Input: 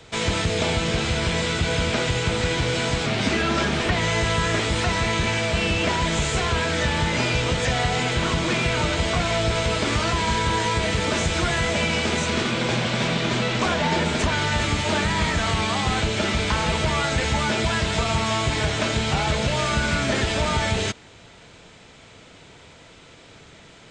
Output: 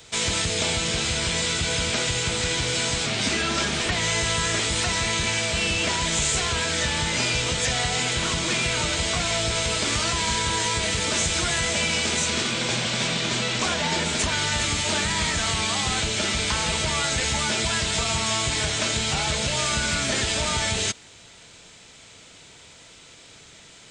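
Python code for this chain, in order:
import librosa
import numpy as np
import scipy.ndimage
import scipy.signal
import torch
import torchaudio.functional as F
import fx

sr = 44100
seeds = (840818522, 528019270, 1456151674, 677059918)

y = F.preemphasis(torch.from_numpy(x), 0.8).numpy()
y = y * librosa.db_to_amplitude(8.5)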